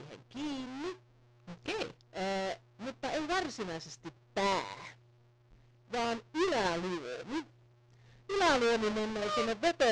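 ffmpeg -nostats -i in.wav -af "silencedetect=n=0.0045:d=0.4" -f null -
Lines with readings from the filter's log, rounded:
silence_start: 0.93
silence_end: 1.48 | silence_duration: 0.55
silence_start: 4.92
silence_end: 5.92 | silence_duration: 1.00
silence_start: 7.42
silence_end: 8.29 | silence_duration: 0.87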